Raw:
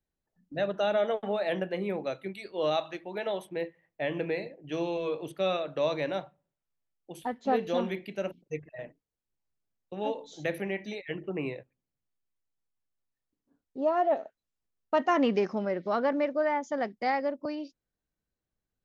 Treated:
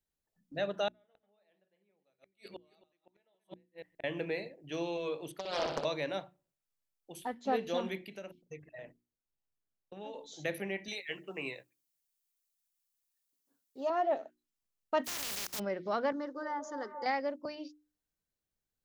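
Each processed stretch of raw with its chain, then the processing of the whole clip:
0:00.88–0:04.04: delay that plays each chunk backwards 128 ms, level −9 dB + gate with flip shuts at −29 dBFS, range −40 dB + single-tap delay 271 ms −20 dB
0:05.39–0:05.85: compressor whose output falls as the input rises −31 dBFS, ratio −0.5 + flutter between parallel walls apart 10.3 metres, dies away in 0.81 s + highs frequency-modulated by the lows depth 0.7 ms
0:07.97–0:10.14: downward compressor 3 to 1, threshold −38 dBFS + one half of a high-frequency compander decoder only
0:10.88–0:13.90: spectral tilt +3 dB per octave + double-tracking delay 15 ms −14 dB
0:15.04–0:15.58: compressing power law on the bin magnitudes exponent 0.17 + output level in coarse steps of 19 dB
0:16.12–0:17.06: phaser with its sweep stopped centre 660 Hz, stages 6 + echo through a band-pass that steps 224 ms, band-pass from 580 Hz, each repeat 0.7 octaves, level −4 dB
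whole clip: high-shelf EQ 3,100 Hz +7.5 dB; mains-hum notches 60/120/180/240/300/360 Hz; level −5 dB

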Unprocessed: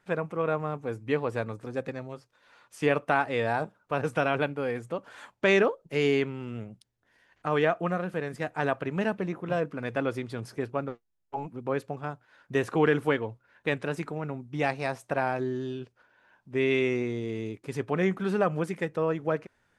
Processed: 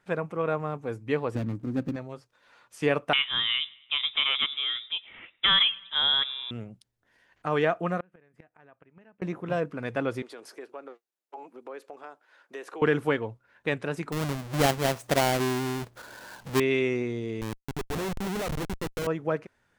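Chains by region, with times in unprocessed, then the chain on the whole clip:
0:01.35–0:01.96: running median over 41 samples + low shelf with overshoot 360 Hz +6 dB, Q 3
0:03.13–0:06.51: repeating echo 105 ms, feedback 53%, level −24 dB + voice inversion scrambler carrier 3,700 Hz
0:08.00–0:09.22: high shelf with overshoot 3,200 Hz −7.5 dB, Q 1.5 + gate with flip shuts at −24 dBFS, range −29 dB
0:10.22–0:12.82: high-pass filter 330 Hz 24 dB per octave + downward compressor 2.5 to 1, threshold −41 dBFS
0:14.12–0:16.60: each half-wave held at its own peak + upward compression, threshold −32 dBFS
0:17.41–0:19.07: low-shelf EQ 200 Hz −6 dB + comparator with hysteresis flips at −33 dBFS + notch filter 4,800 Hz, Q 28
whole clip: no processing

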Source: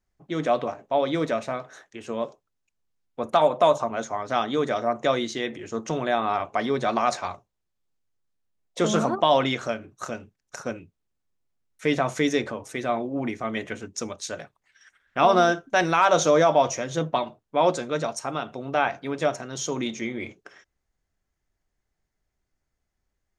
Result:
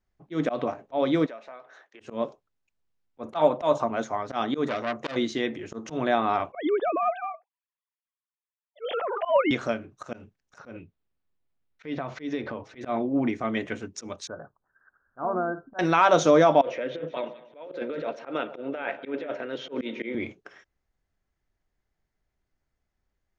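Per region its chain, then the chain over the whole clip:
0:01.26–0:02.00: high-pass filter 430 Hz + high-frequency loss of the air 110 metres + downward compressor 2 to 1, threshold −49 dBFS
0:04.68–0:05.16: parametric band 900 Hz −14.5 dB 0.28 octaves + saturating transformer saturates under 2,700 Hz
0:06.52–0:09.51: three sine waves on the formant tracks + transient designer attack −10 dB, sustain +2 dB
0:10.58–0:12.81: low-pass filter 4,700 Hz 24 dB per octave + downward compressor 4 to 1, threshold −29 dBFS
0:14.27–0:15.79: Butterworth low-pass 1,600 Hz 96 dB per octave + downward compressor 1.5 to 1, threshold −40 dBFS
0:16.61–0:20.15: loudspeaker in its box 350–3,200 Hz, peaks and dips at 510 Hz +7 dB, 760 Hz −9 dB, 1,100 Hz −9 dB + compressor whose output falls as the input rises −31 dBFS + echo with a time of its own for lows and highs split 1,200 Hz, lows 120 ms, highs 187 ms, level −16 dB
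whole clip: Bessel low-pass filter 4,500 Hz, order 2; dynamic equaliser 280 Hz, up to +5 dB, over −39 dBFS, Q 2.2; volume swells 113 ms

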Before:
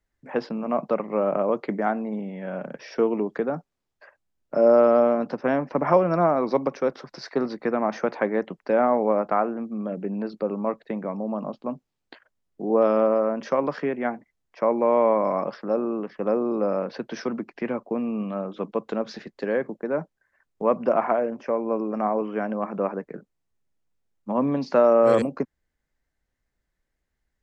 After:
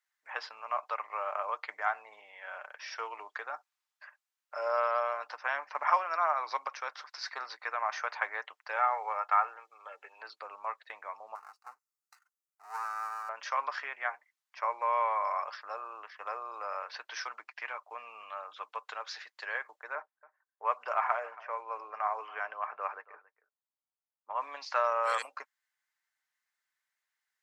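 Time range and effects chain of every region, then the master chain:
0:08.76–0:10.22: high-pass filter 410 Hz + comb filter 2.3 ms, depth 45%
0:11.35–0:13.29: lower of the sound and its delayed copy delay 1.5 ms + parametric band 1,900 Hz −11 dB 1.4 octaves + phaser with its sweep stopped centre 1,400 Hz, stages 4
0:19.95–0:24.41: parametric band 420 Hz +4 dB 0.31 octaves + low-pass that shuts in the quiet parts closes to 690 Hz, open at −17.5 dBFS + single-tap delay 277 ms −20 dB
whole clip: high-pass filter 980 Hz 24 dB per octave; comb filter 6.6 ms, depth 30%

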